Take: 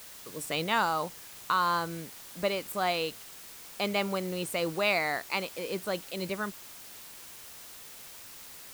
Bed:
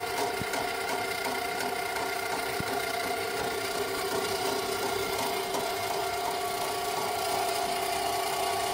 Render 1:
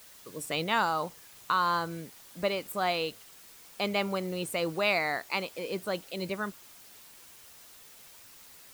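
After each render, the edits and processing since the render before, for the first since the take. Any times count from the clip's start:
broadband denoise 6 dB, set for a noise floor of −48 dBFS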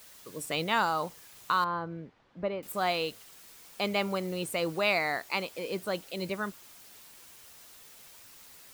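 0:01.64–0:02.63: head-to-tape spacing loss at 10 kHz 44 dB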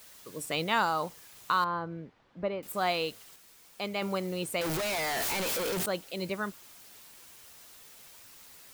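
0:03.36–0:04.02: clip gain −4.5 dB
0:04.61–0:05.86: sign of each sample alone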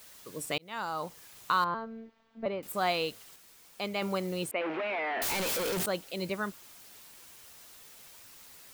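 0:00.58–0:01.24: fade in
0:01.74–0:02.46: phases set to zero 225 Hz
0:04.51–0:05.22: elliptic band-pass filter 250–2,600 Hz, stop band 60 dB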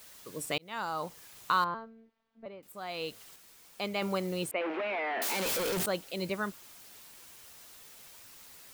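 0:01.59–0:03.23: duck −12 dB, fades 0.35 s
0:04.54–0:05.46: elliptic high-pass filter 190 Hz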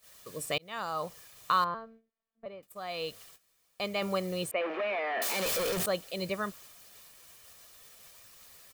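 noise gate −52 dBFS, range −15 dB
comb filter 1.7 ms, depth 37%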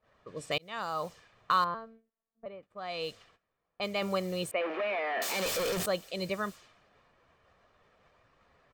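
low-pass that shuts in the quiet parts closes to 1,100 Hz, open at −31 dBFS
parametric band 11,000 Hz −12.5 dB 0.22 octaves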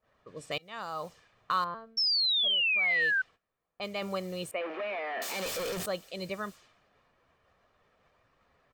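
tuned comb filter 260 Hz, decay 0.2 s, harmonics odd, mix 30%
0:01.97–0:03.22: sound drawn into the spectrogram fall 1,500–5,500 Hz −27 dBFS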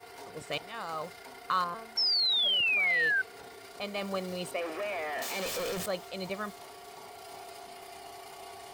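mix in bed −17 dB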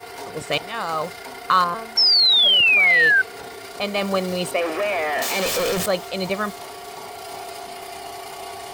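level +12 dB

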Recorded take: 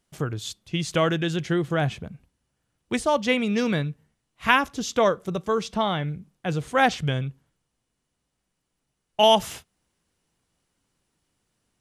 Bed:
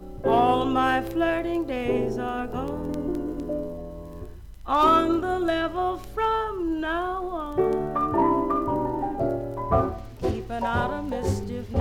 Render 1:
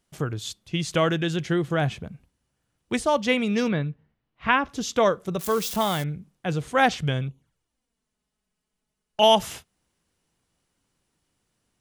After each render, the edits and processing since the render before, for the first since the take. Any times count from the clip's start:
0:03.68–0:04.69: high-frequency loss of the air 270 metres
0:05.39–0:06.04: spike at every zero crossing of −24.5 dBFS
0:07.28–0:09.22: flanger swept by the level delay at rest 4.9 ms, full sweep at −38.5 dBFS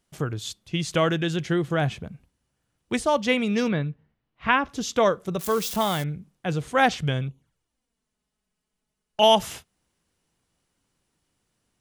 no processing that can be heard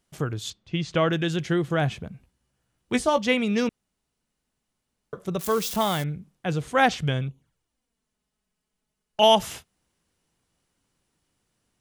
0:00.50–0:01.13: high-frequency loss of the air 130 metres
0:02.12–0:03.19: double-tracking delay 16 ms −7.5 dB
0:03.69–0:05.13: fill with room tone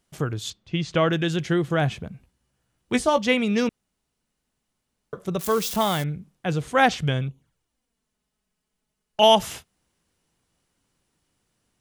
level +1.5 dB

